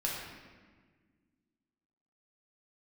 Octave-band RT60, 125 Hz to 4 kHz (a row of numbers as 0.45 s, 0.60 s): 2.3 s, 2.5 s, 1.7 s, 1.4 s, 1.4 s, 1.1 s